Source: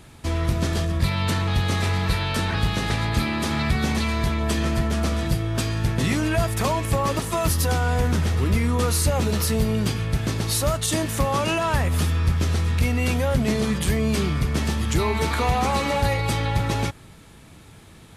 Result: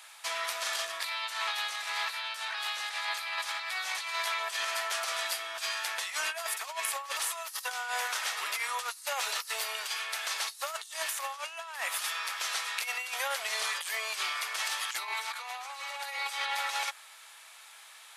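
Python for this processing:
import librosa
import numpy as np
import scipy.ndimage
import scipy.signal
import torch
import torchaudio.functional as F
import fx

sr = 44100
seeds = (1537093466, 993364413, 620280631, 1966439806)

y = scipy.signal.sosfilt(scipy.signal.bessel(6, 1200.0, 'highpass', norm='mag', fs=sr, output='sos'), x)
y = fx.over_compress(y, sr, threshold_db=-34.0, ratio=-0.5)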